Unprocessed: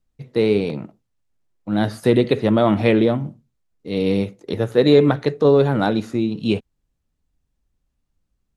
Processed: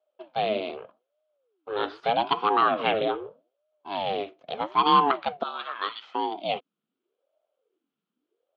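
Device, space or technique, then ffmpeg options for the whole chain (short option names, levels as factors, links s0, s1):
voice changer toy: -filter_complex "[0:a]asettb=1/sr,asplit=3[s0][s1][s2];[s0]atrim=end=5.434[s3];[s1]atrim=start=5.43:end=6.15,asetpts=PTS-STARTPTS,afade=t=in:d=0.004:c=qsin,afade=t=out:st=0.716:d=0.004:c=qsin,highpass=f=930:w=0.5412,highpass=f=930:w=1.3066[s4];[s2]atrim=start=6.146[s5];[s3][s4]acrossfade=d=0.004:c1=hsin:c2=qsin[s6];[s6][s5]acrossfade=d=0.004:c1=qsin:c2=hsin,aeval=exprs='val(0)*sin(2*PI*400*n/s+400*0.55/0.81*sin(2*PI*0.81*n/s))':c=same,highpass=470,equalizer=f=560:t=q:w=4:g=-4,equalizer=f=880:t=q:w=4:g=-4,equalizer=f=1300:t=q:w=4:g=6,equalizer=f=1900:t=q:w=4:g=-7,equalizer=f=3200:t=q:w=4:g=6,lowpass=f=3600:w=0.5412,lowpass=f=3600:w=1.3066"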